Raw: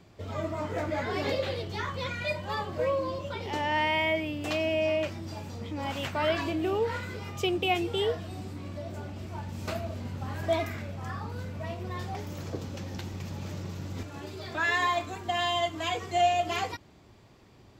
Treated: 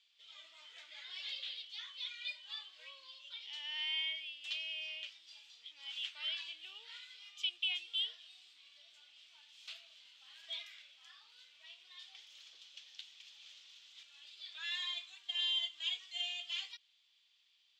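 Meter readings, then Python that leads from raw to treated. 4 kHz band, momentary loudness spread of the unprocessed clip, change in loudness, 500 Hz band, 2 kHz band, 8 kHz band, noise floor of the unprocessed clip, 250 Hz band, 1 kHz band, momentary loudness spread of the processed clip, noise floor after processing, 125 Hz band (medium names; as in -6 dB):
-0.5 dB, 12 LU, -8.5 dB, -40.0 dB, -13.0 dB, -13.0 dB, -55 dBFS, under -40 dB, -32.0 dB, 21 LU, -72 dBFS, under -40 dB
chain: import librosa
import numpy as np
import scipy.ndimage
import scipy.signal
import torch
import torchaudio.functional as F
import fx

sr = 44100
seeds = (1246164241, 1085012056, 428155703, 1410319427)

y = fx.ladder_bandpass(x, sr, hz=3600.0, resonance_pct=65)
y = y * librosa.db_to_amplitude(2.5)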